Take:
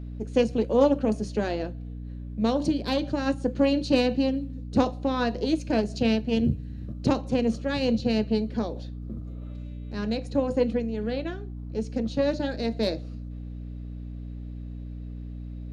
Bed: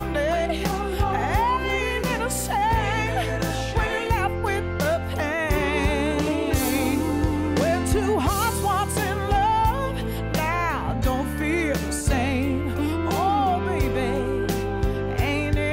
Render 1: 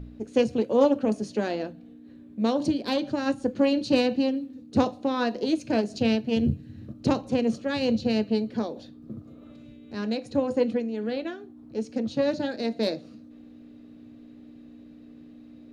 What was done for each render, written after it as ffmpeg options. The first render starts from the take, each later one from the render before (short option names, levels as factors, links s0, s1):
-af "bandreject=f=60:t=h:w=4,bandreject=f=120:t=h:w=4,bandreject=f=180:t=h:w=4"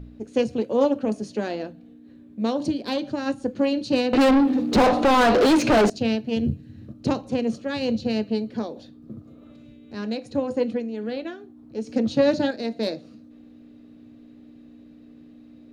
-filter_complex "[0:a]asettb=1/sr,asplit=3[s0][s1][s2];[s0]atrim=end=4.134[s3];[s1]atrim=start=4.13:end=5.9,asetpts=PTS-STARTPTS,afade=t=in:d=0.004:c=qsin,afade=t=out:st=1.766:d=0.004:c=qsin,asplit=2[s4][s5];[s5]highpass=f=720:p=1,volume=79.4,asoftclip=type=tanh:threshold=0.355[s6];[s4][s6]amix=inputs=2:normalize=0,lowpass=f=1800:p=1,volume=0.501[s7];[s2]atrim=start=5.896[s8];[s3][s7]acrossfade=d=0.004:c1=hsin:c2=qsin[s9];[s9][s8]acrossfade=d=0.004:c1=qsin:c2=hsin,asettb=1/sr,asplit=3[s10][s11][s12];[s10]atrim=end=11.874[s13];[s11]atrim=start=11.87:end=12.51,asetpts=PTS-STARTPTS,afade=t=in:d=0.004:c=qsin,afade=t=out:st=0.636:d=0.004:c=qsin,acontrast=53[s14];[s12]atrim=start=12.506[s15];[s13][s14]acrossfade=d=0.004:c1=hsin:c2=qsin[s16];[s16][s15]acrossfade=d=0.004:c1=qsin:c2=hsin"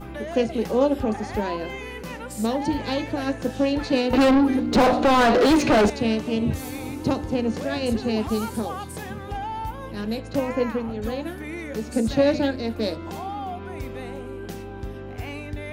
-filter_complex "[1:a]volume=0.299[s0];[0:a][s0]amix=inputs=2:normalize=0"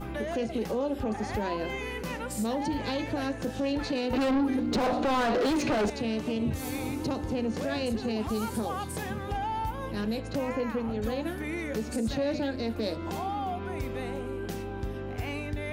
-af "acompressor=threshold=0.0398:ratio=2,alimiter=limit=0.0841:level=0:latency=1:release=14"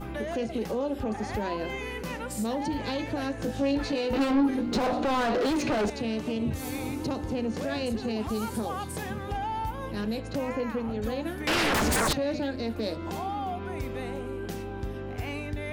-filter_complex "[0:a]asettb=1/sr,asplit=3[s0][s1][s2];[s0]atrim=end=3.364[s3];[s1]atrim=start=3.36:end=4.78,asetpts=PTS-STARTPTS,afade=t=in:d=0.004:c=qsin,afade=t=out:st=1.416:d=0.004:c=qsin,asplit=2[s4][s5];[s5]adelay=18,volume=0.531[s6];[s4][s6]amix=inputs=2:normalize=0,atrim=end_sample=62622[s7];[s2]atrim=start=4.776[s8];[s3][s7]acrossfade=d=0.004:c1=hsin:c2=qsin[s9];[s9][s8]acrossfade=d=0.004:c1=qsin:c2=hsin,asettb=1/sr,asplit=3[s10][s11][s12];[s10]atrim=end=11.474[s13];[s11]atrim=start=11.47:end=12.13,asetpts=PTS-STARTPTS,afade=t=in:d=0.004:c=qsin,afade=t=out:st=0.656:d=0.004:c=qsin,aeval=exprs='0.0841*sin(PI/2*5.01*val(0)/0.0841)':c=same[s14];[s12]atrim=start=12.126[s15];[s13][s14]acrossfade=d=0.004:c1=hsin:c2=qsin[s16];[s16][s15]acrossfade=d=0.004:c1=qsin:c2=hsin"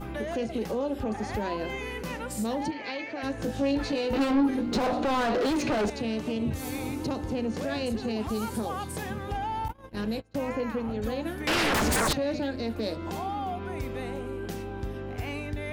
-filter_complex "[0:a]asplit=3[s0][s1][s2];[s0]afade=t=out:st=2.7:d=0.02[s3];[s1]highpass=400,equalizer=f=480:t=q:w=4:g=-5,equalizer=f=960:t=q:w=4:g=-6,equalizer=f=1400:t=q:w=4:g=-3,equalizer=f=2200:t=q:w=4:g=7,equalizer=f=3600:t=q:w=4:g=-7,lowpass=f=5400:w=0.5412,lowpass=f=5400:w=1.3066,afade=t=in:st=2.7:d=0.02,afade=t=out:st=3.22:d=0.02[s4];[s2]afade=t=in:st=3.22:d=0.02[s5];[s3][s4][s5]amix=inputs=3:normalize=0,asettb=1/sr,asplit=3[s6][s7][s8];[s6]atrim=end=9.684[s9];[s7]atrim=start=9.68:end=10.42,asetpts=PTS-STARTPTS,afade=t=in:d=0.004:c=qsin,afade=t=out:st=0.736:d=0.004:c=qsin,agate=range=0.0501:threshold=0.02:ratio=16:release=100:detection=peak[s10];[s8]atrim=start=10.416[s11];[s9][s10]acrossfade=d=0.004:c1=hsin:c2=qsin[s12];[s12][s11]acrossfade=d=0.004:c1=qsin:c2=hsin"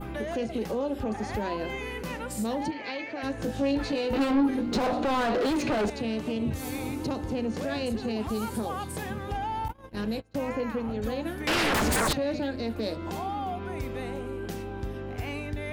-af "adynamicequalizer=threshold=0.002:dfrequency=5800:dqfactor=2.4:tfrequency=5800:tqfactor=2.4:attack=5:release=100:ratio=0.375:range=1.5:mode=cutabove:tftype=bell"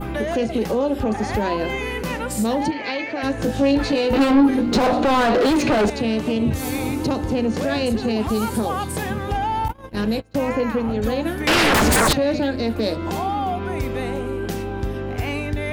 -af "volume=2.82"